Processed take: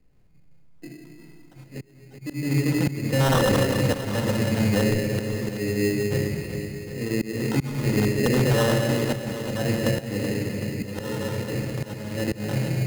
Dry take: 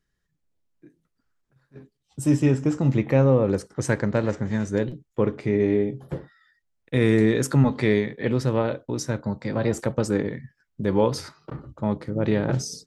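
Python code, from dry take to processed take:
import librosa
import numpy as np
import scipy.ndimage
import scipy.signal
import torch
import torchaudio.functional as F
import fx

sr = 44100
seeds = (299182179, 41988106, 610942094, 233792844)

p1 = fx.peak_eq(x, sr, hz=89.0, db=2.5, octaves=0.77)
p2 = fx.room_shoebox(p1, sr, seeds[0], volume_m3=1200.0, walls='mixed', distance_m=2.1)
p3 = fx.auto_swell(p2, sr, attack_ms=727.0)
p4 = fx.filter_lfo_lowpass(p3, sr, shape='saw_up', hz=0.61, low_hz=640.0, high_hz=2700.0, q=1.3)
p5 = fx.sample_hold(p4, sr, seeds[1], rate_hz=2300.0, jitter_pct=0)
p6 = 10.0 ** (-12.0 / 20.0) * (np.abs((p5 / 10.0 ** (-12.0 / 20.0) + 3.0) % 4.0 - 2.0) - 1.0)
p7 = p6 + fx.echo_feedback(p6, sr, ms=379, feedback_pct=52, wet_db=-12, dry=0)
p8 = fx.band_squash(p7, sr, depth_pct=40)
y = p8 * librosa.db_to_amplitude(-1.0)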